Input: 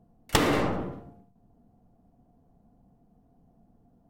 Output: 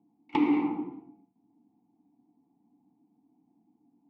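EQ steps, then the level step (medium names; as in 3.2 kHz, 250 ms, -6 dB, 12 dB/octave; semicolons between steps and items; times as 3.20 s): vowel filter u; band-pass 120–4000 Hz; band-stop 640 Hz, Q 21; +7.0 dB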